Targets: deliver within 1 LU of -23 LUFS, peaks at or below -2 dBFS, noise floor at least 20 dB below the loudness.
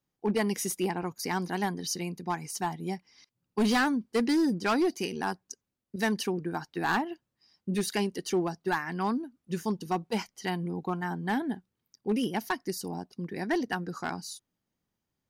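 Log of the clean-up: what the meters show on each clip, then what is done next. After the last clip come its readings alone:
clipped samples 0.9%; clipping level -21.0 dBFS; loudness -31.0 LUFS; peak level -21.0 dBFS; loudness target -23.0 LUFS
-> clip repair -21 dBFS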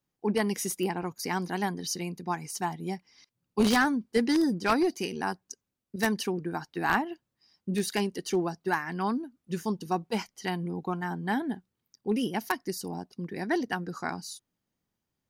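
clipped samples 0.0%; loudness -30.5 LUFS; peak level -12.0 dBFS; loudness target -23.0 LUFS
-> trim +7.5 dB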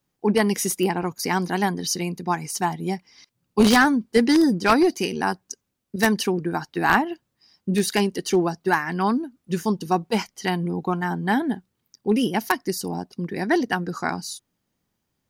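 loudness -23.0 LUFS; peak level -4.5 dBFS; noise floor -77 dBFS

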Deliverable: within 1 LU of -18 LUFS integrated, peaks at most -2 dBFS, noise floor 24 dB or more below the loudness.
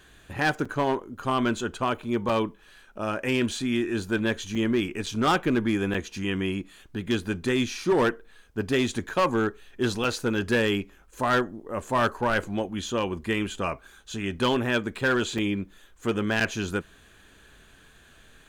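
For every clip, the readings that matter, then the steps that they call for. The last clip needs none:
clipped samples 0.9%; clipping level -17.0 dBFS; dropouts 8; longest dropout 4.8 ms; loudness -27.0 LUFS; peak level -17.0 dBFS; loudness target -18.0 LUFS
-> clip repair -17 dBFS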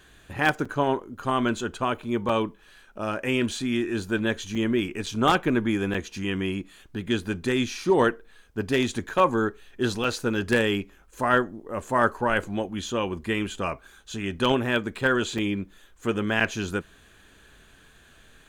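clipped samples 0.0%; dropouts 8; longest dropout 4.8 ms
-> interpolate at 0.65/2.29/4.55/5.06/5.94/10.04/15.38/16.40 s, 4.8 ms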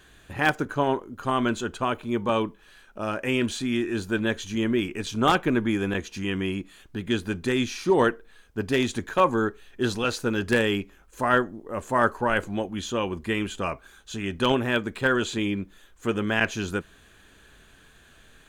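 dropouts 0; loudness -26.0 LUFS; peak level -8.0 dBFS; loudness target -18.0 LUFS
-> trim +8 dB; peak limiter -2 dBFS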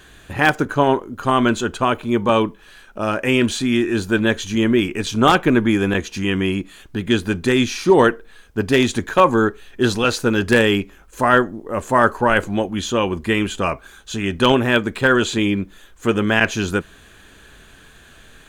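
loudness -18.5 LUFS; peak level -2.0 dBFS; noise floor -47 dBFS

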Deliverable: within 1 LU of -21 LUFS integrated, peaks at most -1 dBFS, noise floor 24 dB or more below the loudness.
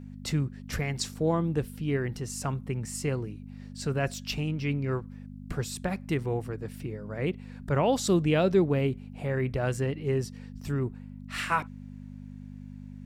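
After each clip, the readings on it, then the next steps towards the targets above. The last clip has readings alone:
hum 50 Hz; highest harmonic 250 Hz; hum level -40 dBFS; loudness -30.0 LUFS; peak level -12.5 dBFS; loudness target -21.0 LUFS
-> de-hum 50 Hz, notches 5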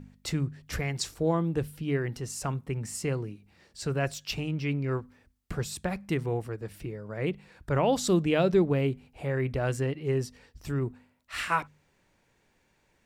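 hum not found; loudness -30.5 LUFS; peak level -12.5 dBFS; loudness target -21.0 LUFS
-> trim +9.5 dB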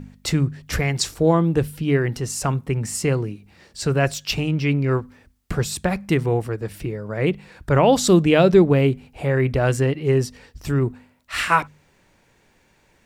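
loudness -21.0 LUFS; peak level -3.0 dBFS; noise floor -60 dBFS

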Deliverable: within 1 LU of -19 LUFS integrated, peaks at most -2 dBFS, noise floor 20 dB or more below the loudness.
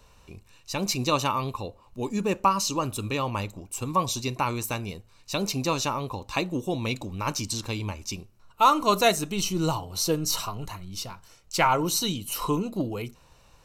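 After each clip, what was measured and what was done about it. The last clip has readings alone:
loudness -27.0 LUFS; peak level -7.0 dBFS; loudness target -19.0 LUFS
-> trim +8 dB; peak limiter -2 dBFS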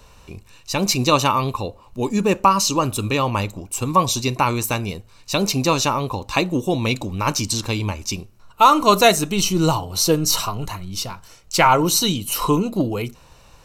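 loudness -19.5 LUFS; peak level -2.0 dBFS; noise floor -49 dBFS

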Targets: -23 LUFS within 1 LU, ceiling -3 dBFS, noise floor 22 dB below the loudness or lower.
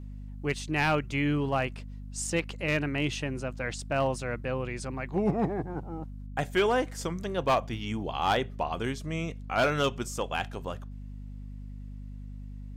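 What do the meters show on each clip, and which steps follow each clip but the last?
clipped samples 0.3%; clipping level -18.5 dBFS; hum 50 Hz; highest harmonic 250 Hz; hum level -38 dBFS; loudness -30.5 LUFS; peak level -18.5 dBFS; loudness target -23.0 LUFS
-> clip repair -18.5 dBFS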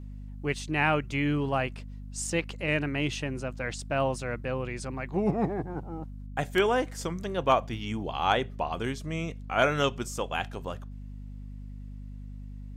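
clipped samples 0.0%; hum 50 Hz; highest harmonic 250 Hz; hum level -38 dBFS
-> de-hum 50 Hz, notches 5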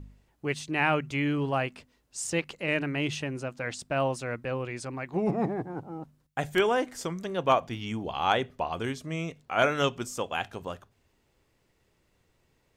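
hum not found; loudness -30.0 LUFS; peak level -9.0 dBFS; loudness target -23.0 LUFS
-> trim +7 dB; peak limiter -3 dBFS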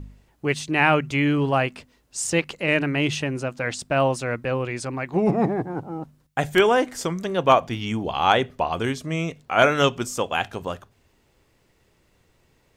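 loudness -23.0 LUFS; peak level -3.0 dBFS; noise floor -64 dBFS

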